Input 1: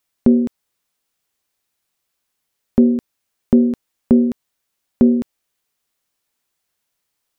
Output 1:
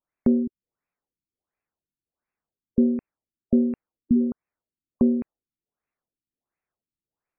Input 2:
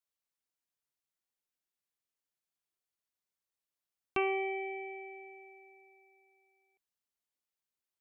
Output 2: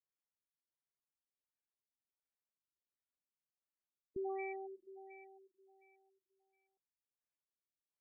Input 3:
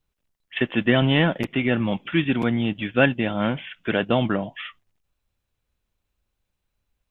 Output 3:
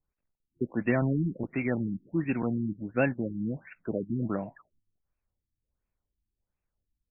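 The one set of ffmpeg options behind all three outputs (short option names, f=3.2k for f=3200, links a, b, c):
-filter_complex "[0:a]acrossover=split=1100[a][b];[b]asoftclip=type=hard:threshold=-22.5dB[c];[a][c]amix=inputs=2:normalize=0,afftfilt=real='re*lt(b*sr/1024,340*pow(2800/340,0.5+0.5*sin(2*PI*1.4*pts/sr)))':imag='im*lt(b*sr/1024,340*pow(2800/340,0.5+0.5*sin(2*PI*1.4*pts/sr)))':win_size=1024:overlap=0.75,volume=-7dB"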